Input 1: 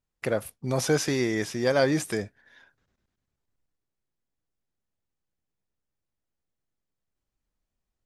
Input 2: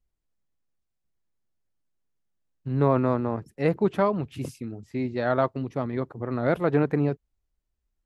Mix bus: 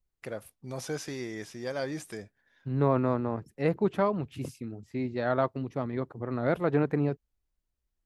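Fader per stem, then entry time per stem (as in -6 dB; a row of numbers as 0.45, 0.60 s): -11.0, -3.5 dB; 0.00, 0.00 s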